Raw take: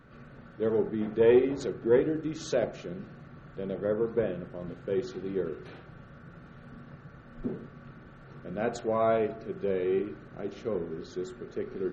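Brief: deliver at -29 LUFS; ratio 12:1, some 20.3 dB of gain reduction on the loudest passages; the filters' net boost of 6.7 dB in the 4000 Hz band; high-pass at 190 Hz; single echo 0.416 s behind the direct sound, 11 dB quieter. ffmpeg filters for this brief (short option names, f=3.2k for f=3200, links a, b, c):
-af "highpass=190,equalizer=f=4k:t=o:g=8,acompressor=threshold=-38dB:ratio=12,aecho=1:1:416:0.282,volume=15dB"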